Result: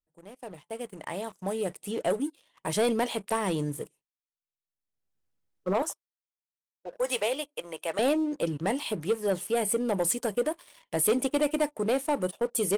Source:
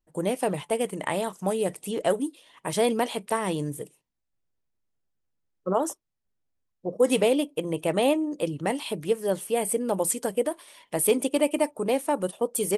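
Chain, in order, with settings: fade-in on the opening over 2.57 s; 5.82–7.99 s: high-pass 720 Hz 12 dB/octave; expander -51 dBFS; waveshaping leveller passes 2; upward compressor, threshold -38 dBFS; trim -7.5 dB

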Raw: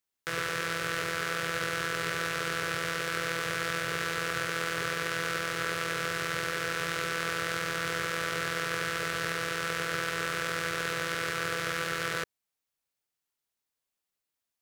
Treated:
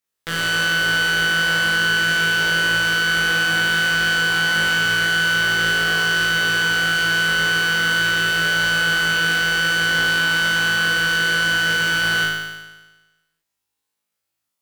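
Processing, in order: Chebyshev shaper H 6 -10 dB, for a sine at -13 dBFS; flutter echo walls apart 3.2 m, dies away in 1.2 s

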